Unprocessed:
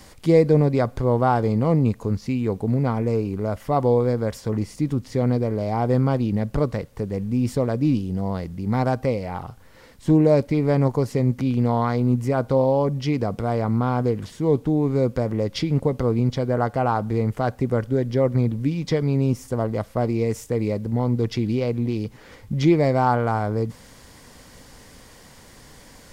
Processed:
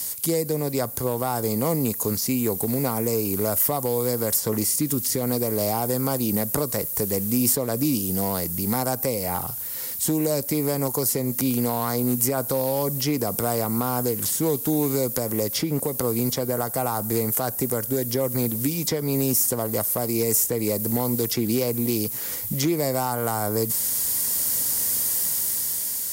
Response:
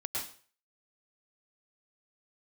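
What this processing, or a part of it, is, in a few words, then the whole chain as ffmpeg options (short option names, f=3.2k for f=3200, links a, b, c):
FM broadcast chain: -filter_complex "[0:a]highpass=76,dynaudnorm=f=290:g=9:m=11dB,acrossover=split=240|1700|5900[a][b][c][d];[a]acompressor=threshold=-28dB:ratio=4[e];[b]acompressor=threshold=-18dB:ratio=4[f];[c]acompressor=threshold=-50dB:ratio=4[g];[d]acompressor=threshold=-48dB:ratio=4[h];[e][f][g][h]amix=inputs=4:normalize=0,aemphasis=mode=production:type=75fm,alimiter=limit=-12dB:level=0:latency=1:release=268,asoftclip=type=hard:threshold=-13.5dB,lowpass=f=15k:w=0.5412,lowpass=f=15k:w=1.3066,aemphasis=mode=production:type=75fm,asettb=1/sr,asplit=3[i][j][k];[i]atrim=end=4.684[l];[j]atrim=start=4.68:end=5.21,asetpts=PTS-STARTPTS,afade=t=in:d=0.004:c=qsin,afade=t=out:st=0.526:d=0.004:c=qsin,equalizer=f=770:w=1.5:g=-6[m];[k]atrim=start=5.206[n];[l][m]acrossfade=d=0.004:c1=hsin:c2=qsin[o];[o][n]acrossfade=d=0.004:c1=qsin:c2=hsin,volume=-1.5dB"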